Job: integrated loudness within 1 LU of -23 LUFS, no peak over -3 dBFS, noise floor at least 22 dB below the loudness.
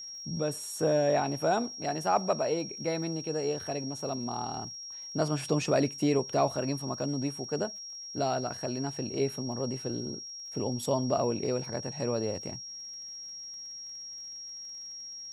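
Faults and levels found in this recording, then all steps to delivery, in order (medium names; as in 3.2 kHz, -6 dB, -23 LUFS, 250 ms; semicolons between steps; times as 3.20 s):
tick rate 38 per s; steady tone 5.6 kHz; tone level -40 dBFS; loudness -32.0 LUFS; peak level -13.5 dBFS; loudness target -23.0 LUFS
-> de-click; band-stop 5.6 kHz, Q 30; trim +9 dB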